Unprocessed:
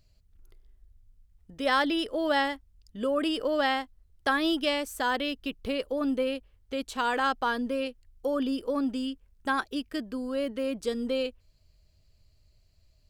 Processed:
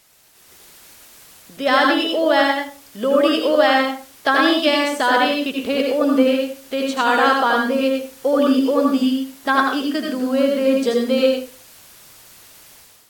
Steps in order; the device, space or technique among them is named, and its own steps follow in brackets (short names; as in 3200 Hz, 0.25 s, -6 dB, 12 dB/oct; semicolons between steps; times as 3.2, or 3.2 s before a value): filmed off a television (BPF 220–7700 Hz; bell 670 Hz +5 dB 0.22 oct; reverb RT60 0.40 s, pre-delay 76 ms, DRR 1 dB; white noise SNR 27 dB; AGC gain up to 10 dB; AAC 64 kbps 44100 Hz)